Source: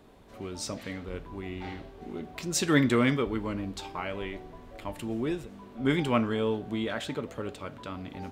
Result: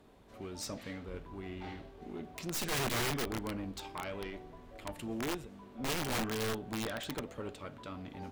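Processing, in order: valve stage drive 24 dB, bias 0.6; integer overflow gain 27.5 dB; trim -2 dB

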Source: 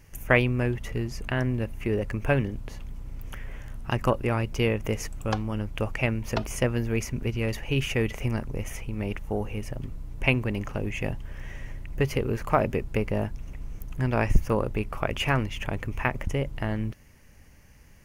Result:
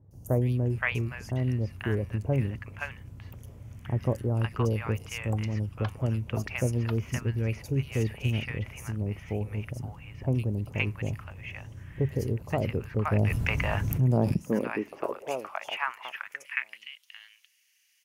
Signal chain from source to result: three bands offset in time lows, highs, mids 110/520 ms, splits 840/4200 Hz; high-pass sweep 92 Hz -> 3.2 kHz, 13.81–16.94 s; 13.12–14.34 s: level flattener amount 70%; trim -4.5 dB

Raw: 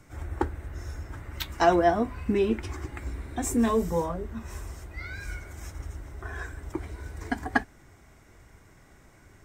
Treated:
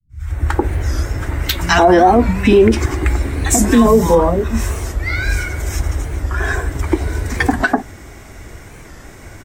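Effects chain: fade-in on the opening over 0.59 s; three bands offset in time lows, highs, mids 90/180 ms, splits 160/1100 Hz; loudness maximiser +20.5 dB; warped record 45 rpm, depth 160 cents; trim -1 dB

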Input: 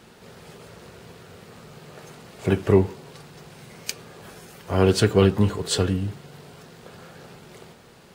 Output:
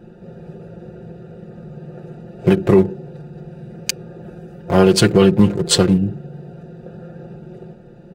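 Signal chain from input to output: local Wiener filter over 41 samples; comb 5.7 ms, depth 68%; loudness maximiser +10.5 dB; trim -1 dB

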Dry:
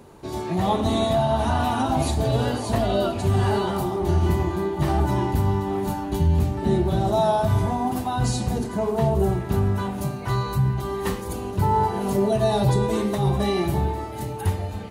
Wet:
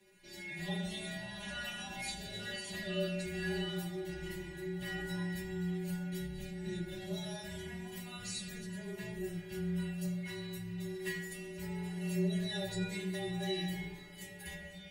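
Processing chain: resonant high shelf 1.5 kHz +9 dB, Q 3; inharmonic resonator 200 Hz, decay 0.4 s, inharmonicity 0.002; on a send at -4 dB: reverberation RT60 0.85 s, pre-delay 3 ms; on the sum: frequency shift -20 Hz; trim -6 dB

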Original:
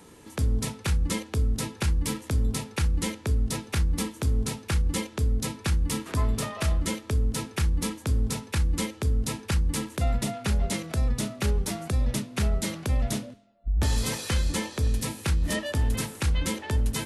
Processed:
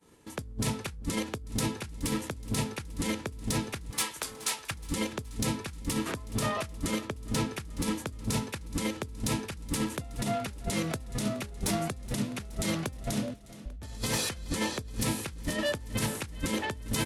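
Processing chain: expander -40 dBFS; 3.90–4.71 s: high-pass 930 Hz 12 dB/octave; 7.06–7.50 s: treble shelf 4.9 kHz -> 8.1 kHz -8.5 dB; compressor with a negative ratio -31 dBFS, ratio -0.5; saturation -20.5 dBFS, distortion -19 dB; feedback delay 422 ms, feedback 52%, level -18 dB

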